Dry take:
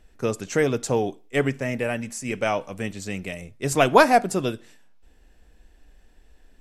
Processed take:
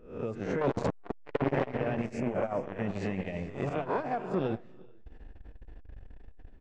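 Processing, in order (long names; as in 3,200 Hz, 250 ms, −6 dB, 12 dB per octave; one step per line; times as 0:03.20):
peak hold with a rise ahead of every peak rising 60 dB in 0.48 s
0:02.20–0:02.63: parametric band 5,100 Hz −12 dB 2.5 octaves
0:03.69–0:04.34: noise gate −15 dBFS, range −11 dB
downward compressor 8 to 1, threshold −23 dBFS, peak gain reduction 16 dB
0:00.61–0:01.66: leveller curve on the samples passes 5
automatic gain control gain up to 15 dB
brickwall limiter −10.5 dBFS, peak gain reduction 9 dB
head-to-tape spacing loss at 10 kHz 38 dB
repeating echo 145 ms, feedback 57%, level −23.5 dB
convolution reverb, pre-delay 3 ms, DRR 11 dB
saturating transformer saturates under 510 Hz
level −6.5 dB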